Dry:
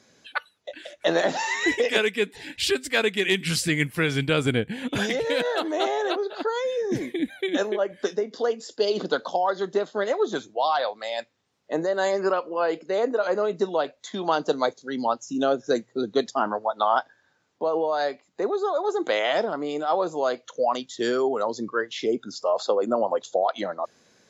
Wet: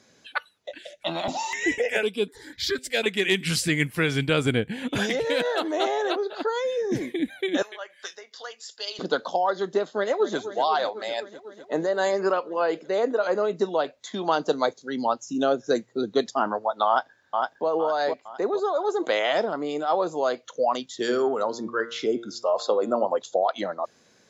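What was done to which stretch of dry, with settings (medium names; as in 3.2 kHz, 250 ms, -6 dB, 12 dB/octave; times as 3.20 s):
0.78–3.06 s: stepped phaser 4 Hz 290–6600 Hz
7.62–8.99 s: high-pass 1.4 kHz
9.94–10.39 s: echo throw 250 ms, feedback 80%, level -13 dB
16.87–17.67 s: echo throw 460 ms, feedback 40%, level -3.5 dB
20.97–23.06 s: de-hum 116.7 Hz, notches 33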